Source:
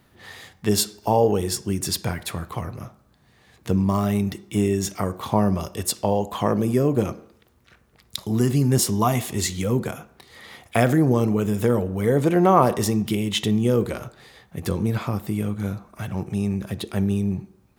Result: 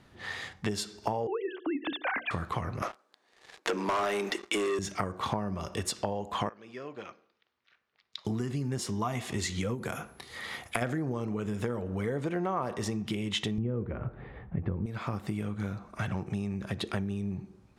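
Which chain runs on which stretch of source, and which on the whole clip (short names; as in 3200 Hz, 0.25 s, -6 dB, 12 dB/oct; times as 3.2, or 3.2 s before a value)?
1.27–2.31 sine-wave speech + notches 60/120/180/240/300/360/420/480 Hz
2.82–4.79 HPF 350 Hz 24 dB/oct + sample leveller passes 3
6.49–8.25 band-pass 7900 Hz, Q 0.52 + air absorption 260 m
9.74–10.81 bell 13000 Hz +10.5 dB 1.1 oct + compressor 4:1, threshold -23 dBFS + whine 11000 Hz -55 dBFS
13.58–14.86 LPF 2600 Hz 24 dB/oct + tilt -3.5 dB/oct
whole clip: LPF 7500 Hz 12 dB/oct; compressor 12:1, threshold -29 dBFS; dynamic EQ 1600 Hz, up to +5 dB, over -52 dBFS, Q 0.87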